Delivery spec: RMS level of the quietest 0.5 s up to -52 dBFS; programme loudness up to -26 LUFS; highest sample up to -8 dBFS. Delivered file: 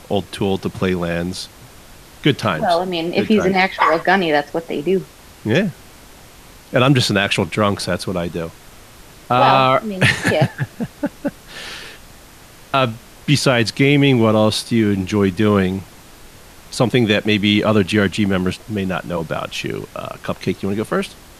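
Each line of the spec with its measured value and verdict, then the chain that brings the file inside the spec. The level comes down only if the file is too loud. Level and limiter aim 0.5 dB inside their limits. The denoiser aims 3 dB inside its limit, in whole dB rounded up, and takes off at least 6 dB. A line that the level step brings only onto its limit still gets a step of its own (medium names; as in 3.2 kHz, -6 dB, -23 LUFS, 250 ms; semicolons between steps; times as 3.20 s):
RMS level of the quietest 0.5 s -42 dBFS: fail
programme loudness -17.5 LUFS: fail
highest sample -1.5 dBFS: fail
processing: noise reduction 6 dB, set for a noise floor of -42 dBFS; trim -9 dB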